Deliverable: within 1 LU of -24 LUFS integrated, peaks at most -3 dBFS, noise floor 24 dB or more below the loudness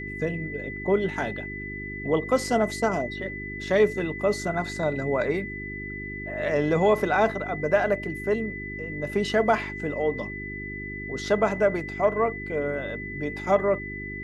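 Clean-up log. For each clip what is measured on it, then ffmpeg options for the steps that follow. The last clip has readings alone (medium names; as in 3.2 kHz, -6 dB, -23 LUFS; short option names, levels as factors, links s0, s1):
hum 50 Hz; highest harmonic 400 Hz; hum level -35 dBFS; steady tone 2 kHz; tone level -35 dBFS; loudness -26.5 LUFS; peak level -8.0 dBFS; loudness target -24.0 LUFS
-> -af "bandreject=f=50:t=h:w=4,bandreject=f=100:t=h:w=4,bandreject=f=150:t=h:w=4,bandreject=f=200:t=h:w=4,bandreject=f=250:t=h:w=4,bandreject=f=300:t=h:w=4,bandreject=f=350:t=h:w=4,bandreject=f=400:t=h:w=4"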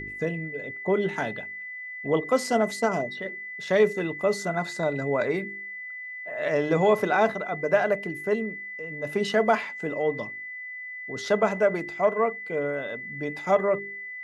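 hum not found; steady tone 2 kHz; tone level -35 dBFS
-> -af "bandreject=f=2000:w=30"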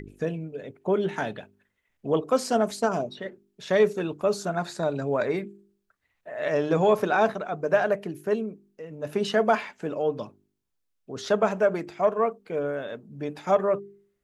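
steady tone not found; loudness -26.5 LUFS; peak level -9.0 dBFS; loudness target -24.0 LUFS
-> -af "volume=1.33"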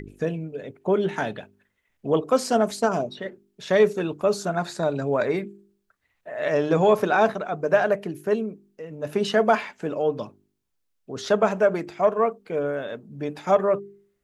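loudness -24.0 LUFS; peak level -6.5 dBFS; noise floor -74 dBFS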